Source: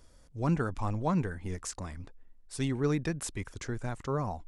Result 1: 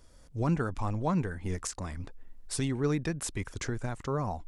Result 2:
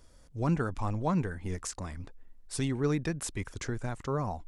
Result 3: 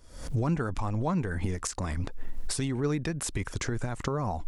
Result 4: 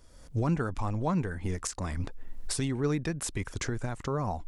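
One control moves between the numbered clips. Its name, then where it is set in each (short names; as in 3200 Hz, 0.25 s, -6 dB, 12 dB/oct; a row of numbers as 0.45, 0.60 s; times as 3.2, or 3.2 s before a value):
recorder AGC, rising by: 13, 5.4, 87, 34 dB/s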